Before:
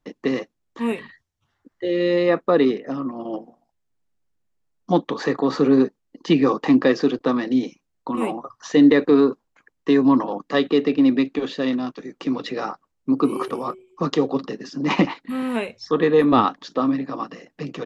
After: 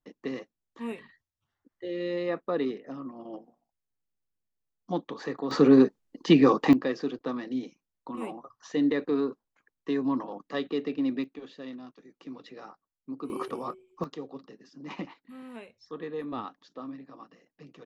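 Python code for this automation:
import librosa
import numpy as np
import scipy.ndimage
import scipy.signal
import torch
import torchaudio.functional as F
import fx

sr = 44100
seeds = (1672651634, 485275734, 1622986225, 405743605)

y = fx.gain(x, sr, db=fx.steps((0.0, -12.0), (5.51, -1.5), (6.73, -12.0), (11.24, -18.5), (13.3, -8.0), (14.04, -19.5)))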